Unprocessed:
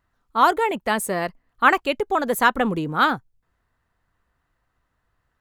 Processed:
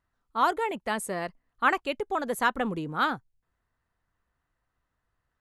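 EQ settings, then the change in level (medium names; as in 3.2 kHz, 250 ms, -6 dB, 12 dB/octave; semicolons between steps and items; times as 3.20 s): brick-wall FIR low-pass 12 kHz; -7.5 dB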